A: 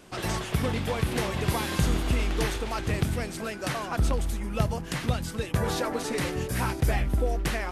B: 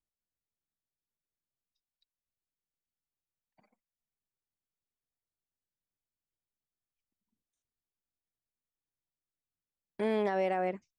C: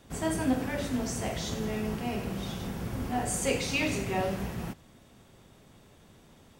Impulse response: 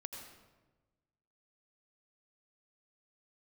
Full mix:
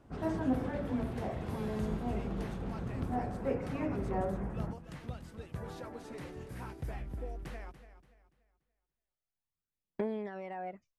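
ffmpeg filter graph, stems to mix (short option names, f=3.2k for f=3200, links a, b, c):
-filter_complex "[0:a]volume=-15dB,asplit=2[a][b];[b]volume=-13dB[c];[1:a]acompressor=threshold=-36dB:ratio=6,aphaser=in_gain=1:out_gain=1:delay=4.9:decay=0.52:speed=0.2:type=triangular,volume=-0.5dB[d];[2:a]lowpass=f=1.7k:w=0.5412,lowpass=f=1.7k:w=1.3066,volume=-3.5dB[e];[c]aecho=0:1:288|576|864|1152|1440:1|0.34|0.116|0.0393|0.0134[f];[a][d][e][f]amix=inputs=4:normalize=0,highshelf=f=2.3k:g=-9.5"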